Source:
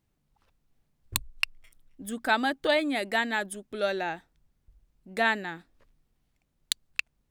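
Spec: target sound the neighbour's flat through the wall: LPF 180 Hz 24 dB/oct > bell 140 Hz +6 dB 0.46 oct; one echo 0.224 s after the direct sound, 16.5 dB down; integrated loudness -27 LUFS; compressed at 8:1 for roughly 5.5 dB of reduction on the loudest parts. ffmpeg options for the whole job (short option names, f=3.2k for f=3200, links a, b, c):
-af "acompressor=threshold=-29dB:ratio=8,lowpass=f=180:w=0.5412,lowpass=f=180:w=1.3066,equalizer=f=140:t=o:w=0.46:g=6,aecho=1:1:224:0.15,volume=24.5dB"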